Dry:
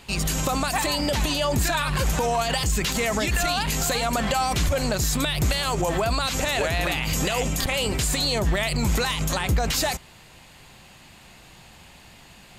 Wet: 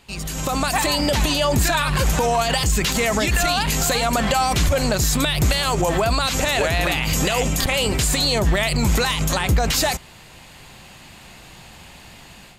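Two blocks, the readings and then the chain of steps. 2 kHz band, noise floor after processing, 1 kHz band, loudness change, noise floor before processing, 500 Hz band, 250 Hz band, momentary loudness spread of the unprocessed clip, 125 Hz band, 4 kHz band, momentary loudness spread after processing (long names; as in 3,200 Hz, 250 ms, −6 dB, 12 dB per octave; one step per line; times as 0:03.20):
+4.0 dB, −44 dBFS, +4.0 dB, +4.0 dB, −49 dBFS, +4.0 dB, +4.0 dB, 2 LU, +4.0 dB, +4.0 dB, 2 LU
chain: automatic gain control gain up to 10.5 dB
level −5 dB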